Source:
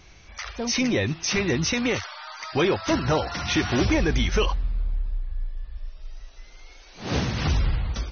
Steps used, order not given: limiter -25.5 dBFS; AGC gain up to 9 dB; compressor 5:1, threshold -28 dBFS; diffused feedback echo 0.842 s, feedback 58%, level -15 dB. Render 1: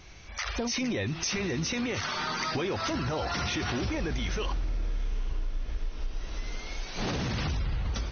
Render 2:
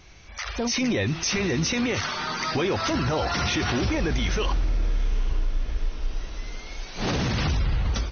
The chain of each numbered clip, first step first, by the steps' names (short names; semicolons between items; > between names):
limiter > AGC > diffused feedback echo > compressor; limiter > diffused feedback echo > compressor > AGC